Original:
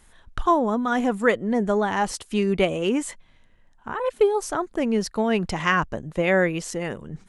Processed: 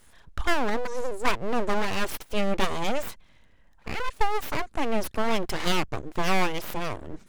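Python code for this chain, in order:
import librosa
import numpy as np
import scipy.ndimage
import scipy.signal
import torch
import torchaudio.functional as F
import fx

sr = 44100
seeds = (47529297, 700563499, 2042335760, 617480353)

p1 = fx.spec_box(x, sr, start_s=0.86, length_s=0.39, low_hz=410.0, high_hz=3900.0, gain_db=-24)
p2 = np.clip(p1, -10.0 ** (-23.5 / 20.0), 10.0 ** (-23.5 / 20.0))
p3 = p1 + (p2 * librosa.db_to_amplitude(-5.0))
p4 = fx.cheby_harmonics(p3, sr, harmonics=(4,), levels_db=(-19,), full_scale_db=-5.0)
p5 = np.abs(p4)
y = p5 * librosa.db_to_amplitude(-3.0)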